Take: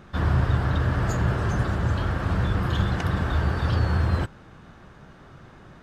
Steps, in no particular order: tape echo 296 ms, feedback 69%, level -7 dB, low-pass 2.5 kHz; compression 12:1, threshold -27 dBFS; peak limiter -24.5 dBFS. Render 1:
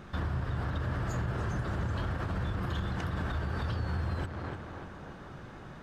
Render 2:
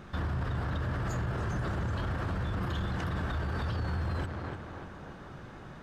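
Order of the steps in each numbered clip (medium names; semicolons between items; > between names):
tape echo > compression > peak limiter; tape echo > peak limiter > compression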